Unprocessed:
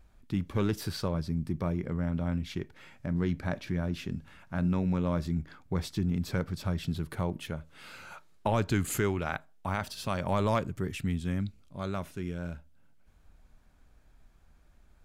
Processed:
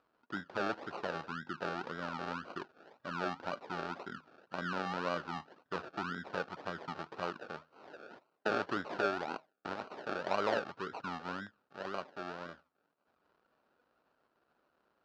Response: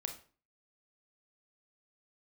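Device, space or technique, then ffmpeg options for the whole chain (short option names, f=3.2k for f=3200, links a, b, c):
circuit-bent sampling toy: -af "acrusher=samples=35:mix=1:aa=0.000001:lfo=1:lforange=21:lforate=1.9,highpass=410,equalizer=f=1.4k:t=q:w=4:g=8,equalizer=f=2.1k:t=q:w=4:g=-8,equalizer=f=3.4k:t=q:w=4:g=-6,lowpass=f=4.3k:w=0.5412,lowpass=f=4.3k:w=1.3066,volume=-1.5dB"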